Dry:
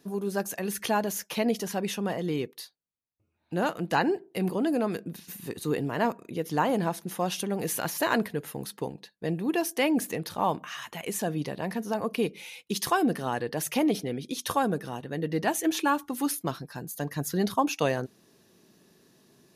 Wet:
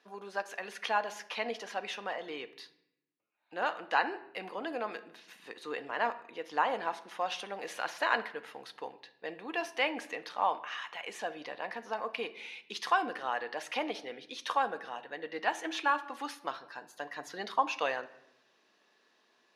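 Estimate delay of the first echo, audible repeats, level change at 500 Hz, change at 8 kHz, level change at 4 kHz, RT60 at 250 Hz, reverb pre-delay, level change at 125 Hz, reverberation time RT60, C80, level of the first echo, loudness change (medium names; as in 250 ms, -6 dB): no echo, no echo, -8.0 dB, -15.0 dB, -3.5 dB, 1.1 s, 4 ms, under -25 dB, 0.80 s, 18.0 dB, no echo, -6.0 dB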